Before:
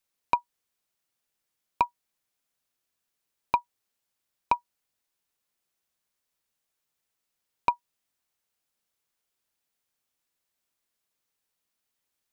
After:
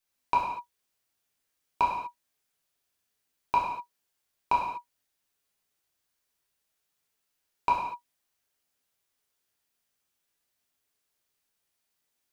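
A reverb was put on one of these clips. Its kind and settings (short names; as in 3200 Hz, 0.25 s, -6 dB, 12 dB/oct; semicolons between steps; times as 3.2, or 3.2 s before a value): non-linear reverb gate 0.27 s falling, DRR -5 dB; gain -4 dB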